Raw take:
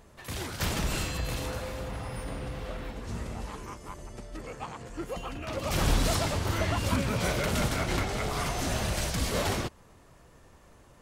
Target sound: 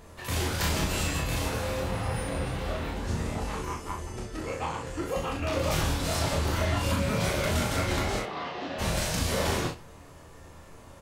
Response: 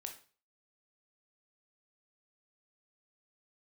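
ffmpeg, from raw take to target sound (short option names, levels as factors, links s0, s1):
-filter_complex "[0:a]acompressor=threshold=0.0282:ratio=5,asplit=3[s0][s1][s2];[s0]afade=t=out:st=8.18:d=0.02[s3];[s1]highpass=310,equalizer=f=420:t=q:w=4:g=-4,equalizer=f=640:t=q:w=4:g=-6,equalizer=f=950:t=q:w=4:g=-4,equalizer=f=1400:t=q:w=4:g=-8,equalizer=f=2300:t=q:w=4:g=-8,equalizer=f=3300:t=q:w=4:g=-4,lowpass=f=3400:w=0.5412,lowpass=f=3400:w=1.3066,afade=t=in:st=8.18:d=0.02,afade=t=out:st=8.78:d=0.02[s4];[s2]afade=t=in:st=8.78:d=0.02[s5];[s3][s4][s5]amix=inputs=3:normalize=0,aecho=1:1:25|38|63:0.562|0.562|0.422,asplit=2[s6][s7];[1:a]atrim=start_sample=2205,adelay=11[s8];[s7][s8]afir=irnorm=-1:irlink=0,volume=0.501[s9];[s6][s9]amix=inputs=2:normalize=0,volume=1.58"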